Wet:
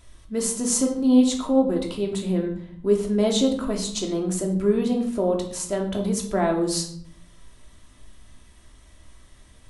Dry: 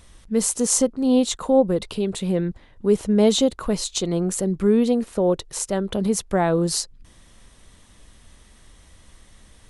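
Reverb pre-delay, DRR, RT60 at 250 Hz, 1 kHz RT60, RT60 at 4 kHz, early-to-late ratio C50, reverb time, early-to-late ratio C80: 3 ms, 0.0 dB, 0.95 s, 0.65 s, 0.45 s, 8.0 dB, 0.65 s, 11.5 dB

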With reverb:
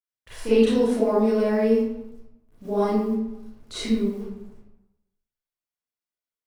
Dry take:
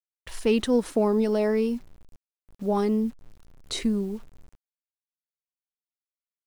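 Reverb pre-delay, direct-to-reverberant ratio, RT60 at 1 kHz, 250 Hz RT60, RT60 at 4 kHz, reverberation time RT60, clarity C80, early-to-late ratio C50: 29 ms, −12.0 dB, 0.90 s, 0.90 s, 0.55 s, 0.90 s, 1.5 dB, −3.0 dB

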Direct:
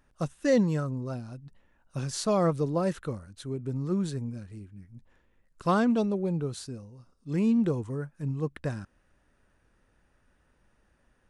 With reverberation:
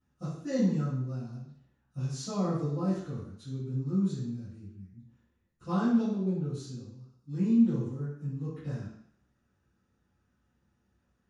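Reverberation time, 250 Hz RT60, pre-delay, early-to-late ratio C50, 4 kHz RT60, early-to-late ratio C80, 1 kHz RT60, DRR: 0.65 s, 0.70 s, 3 ms, 0.5 dB, 0.70 s, 4.5 dB, 0.70 s, −17.0 dB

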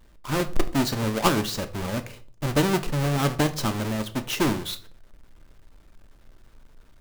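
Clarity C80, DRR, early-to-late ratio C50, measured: 20.5 dB, 8.5 dB, 16.0 dB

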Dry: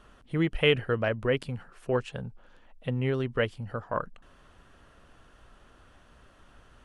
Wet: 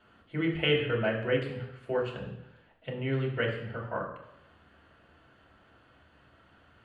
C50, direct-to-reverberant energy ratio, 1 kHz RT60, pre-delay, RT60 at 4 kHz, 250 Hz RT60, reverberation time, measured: 6.5 dB, −3.0 dB, 0.85 s, 3 ms, 0.90 s, 0.85 s, 0.85 s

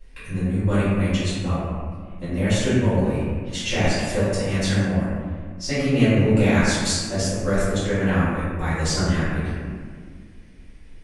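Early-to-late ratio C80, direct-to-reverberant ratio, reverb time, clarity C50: −0.5 dB, −15.0 dB, 1.8 s, −3.0 dB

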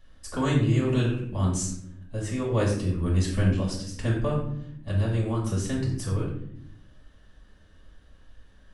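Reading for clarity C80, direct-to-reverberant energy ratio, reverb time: 7.5 dB, −6.0 dB, 0.70 s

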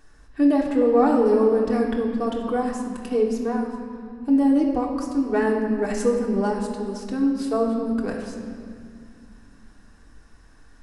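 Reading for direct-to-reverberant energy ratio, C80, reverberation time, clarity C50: −1.5 dB, 5.0 dB, 2.2 s, 3.5 dB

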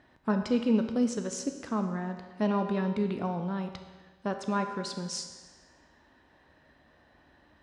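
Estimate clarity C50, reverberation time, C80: 7.5 dB, 1.4 s, 9.0 dB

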